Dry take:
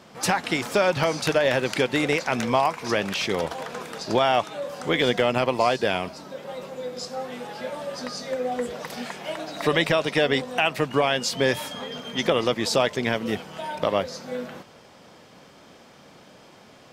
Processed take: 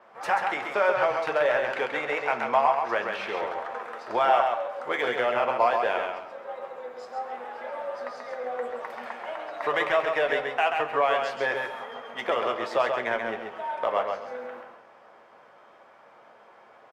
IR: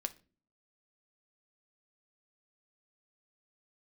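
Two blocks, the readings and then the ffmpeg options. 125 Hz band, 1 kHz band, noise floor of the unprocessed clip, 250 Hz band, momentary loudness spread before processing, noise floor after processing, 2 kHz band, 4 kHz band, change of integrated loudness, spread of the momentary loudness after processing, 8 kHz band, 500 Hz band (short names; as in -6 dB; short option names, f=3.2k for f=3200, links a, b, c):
-19.0 dB, +1.5 dB, -51 dBFS, -13.0 dB, 12 LU, -54 dBFS, -1.5 dB, -10.5 dB, -2.5 dB, 14 LU, under -15 dB, -2.5 dB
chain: -filter_complex "[0:a]acrossover=split=530 2100:gain=0.0794 1 0.141[a][b][c];[a][b][c]amix=inputs=3:normalize=0,bandreject=f=46.07:t=h:w=4,bandreject=f=92.14:t=h:w=4,bandreject=f=138.21:t=h:w=4,bandreject=f=184.28:t=h:w=4,asplit=2[d][e];[e]adynamicsmooth=sensitivity=7.5:basefreq=3k,volume=-2.5dB[f];[d][f]amix=inputs=2:normalize=0,aecho=1:1:134|268|402:0.562|0.141|0.0351[g];[1:a]atrim=start_sample=2205,asetrate=29106,aresample=44100[h];[g][h]afir=irnorm=-1:irlink=0,adynamicequalizer=threshold=0.00631:dfrequency=7300:dqfactor=0.7:tfrequency=7300:tqfactor=0.7:attack=5:release=100:ratio=0.375:range=2.5:mode=cutabove:tftype=highshelf,volume=-5dB"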